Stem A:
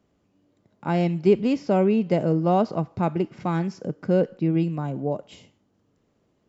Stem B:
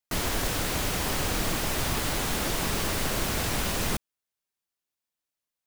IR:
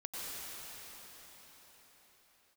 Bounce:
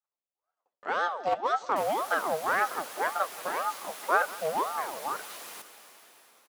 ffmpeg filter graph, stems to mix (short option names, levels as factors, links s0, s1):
-filter_complex "[0:a]flanger=delay=8.8:depth=6.8:regen=28:speed=1.4:shape=sinusoidal,aeval=exprs='clip(val(0),-1,0.0794)':c=same,aeval=exprs='val(0)*sin(2*PI*680*n/s+680*0.55/1.9*sin(2*PI*1.9*n/s))':c=same,volume=1.33,asplit=2[s0][s1];[s1]volume=0.1[s2];[1:a]equalizer=f=11000:t=o:w=0.38:g=6.5,adelay=1650,volume=0.15,asplit=2[s3][s4];[s4]volume=0.501[s5];[2:a]atrim=start_sample=2205[s6];[s5][s6]afir=irnorm=-1:irlink=0[s7];[s2]aecho=0:1:179|358|537|716|895|1074|1253|1432|1611|1790:1|0.6|0.36|0.216|0.13|0.0778|0.0467|0.028|0.0168|0.0101[s8];[s0][s3][s7][s8]amix=inputs=4:normalize=0,highpass=550,agate=range=0.0224:threshold=0.00141:ratio=3:detection=peak"